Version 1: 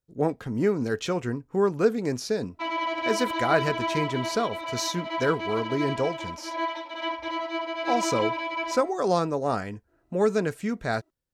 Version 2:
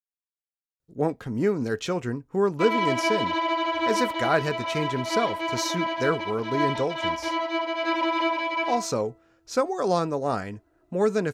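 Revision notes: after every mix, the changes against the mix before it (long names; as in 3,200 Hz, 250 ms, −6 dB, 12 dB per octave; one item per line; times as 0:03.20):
speech: entry +0.80 s
background +3.5 dB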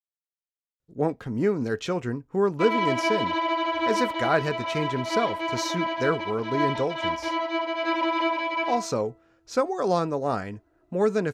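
master: add high-shelf EQ 6,500 Hz −6.5 dB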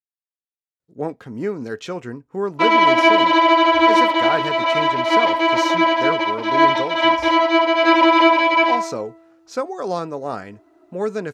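speech: add high-pass filter 170 Hz 6 dB per octave
background +12.0 dB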